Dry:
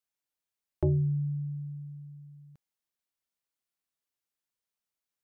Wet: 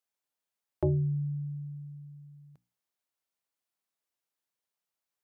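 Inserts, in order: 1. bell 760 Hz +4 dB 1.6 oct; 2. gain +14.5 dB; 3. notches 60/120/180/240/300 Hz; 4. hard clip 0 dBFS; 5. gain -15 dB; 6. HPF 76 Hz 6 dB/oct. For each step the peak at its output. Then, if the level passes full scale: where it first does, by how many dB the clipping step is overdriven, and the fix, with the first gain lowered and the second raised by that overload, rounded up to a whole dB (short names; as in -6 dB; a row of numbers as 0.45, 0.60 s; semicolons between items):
-17.5, -3.0, -3.0, -3.0, -18.0, -16.5 dBFS; no overload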